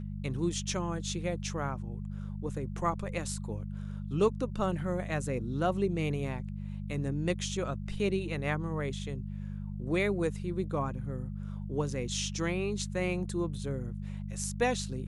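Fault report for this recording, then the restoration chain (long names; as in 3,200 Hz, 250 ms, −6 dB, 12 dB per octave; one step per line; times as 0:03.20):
mains hum 50 Hz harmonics 4 −38 dBFS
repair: hum removal 50 Hz, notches 4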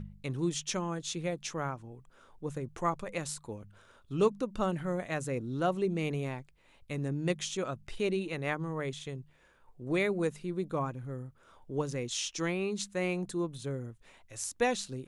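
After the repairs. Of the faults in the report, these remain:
none of them is left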